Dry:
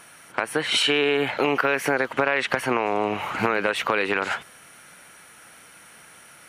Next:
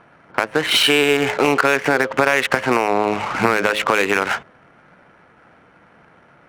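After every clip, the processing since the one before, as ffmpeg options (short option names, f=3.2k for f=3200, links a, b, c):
-af "bandreject=f=106.3:t=h:w=4,bandreject=f=212.6:t=h:w=4,bandreject=f=318.9:t=h:w=4,bandreject=f=425.2:t=h:w=4,bandreject=f=531.5:t=h:w=4,bandreject=f=637.8:t=h:w=4,adynamicsmooth=sensitivity=4.5:basefreq=940,volume=6dB"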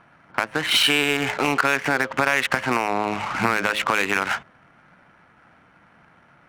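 -af "equalizer=f=450:t=o:w=0.91:g=-7.5,volume=-2.5dB"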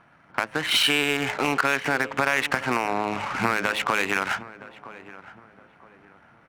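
-filter_complex "[0:a]asplit=2[a][b];[b]adelay=967,lowpass=f=1.4k:p=1,volume=-16dB,asplit=2[c][d];[d]adelay=967,lowpass=f=1.4k:p=1,volume=0.36,asplit=2[e][f];[f]adelay=967,lowpass=f=1.4k:p=1,volume=0.36[g];[a][c][e][g]amix=inputs=4:normalize=0,volume=-2.5dB"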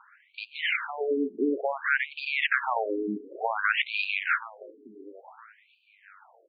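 -filter_complex "[0:a]acrossover=split=1200[a][b];[b]asoftclip=type=tanh:threshold=-17dB[c];[a][c]amix=inputs=2:normalize=0,afftfilt=real='re*between(b*sr/1024,300*pow(3400/300,0.5+0.5*sin(2*PI*0.56*pts/sr))/1.41,300*pow(3400/300,0.5+0.5*sin(2*PI*0.56*pts/sr))*1.41)':imag='im*between(b*sr/1024,300*pow(3400/300,0.5+0.5*sin(2*PI*0.56*pts/sr))/1.41,300*pow(3400/300,0.5+0.5*sin(2*PI*0.56*pts/sr))*1.41)':win_size=1024:overlap=0.75,volume=3.5dB"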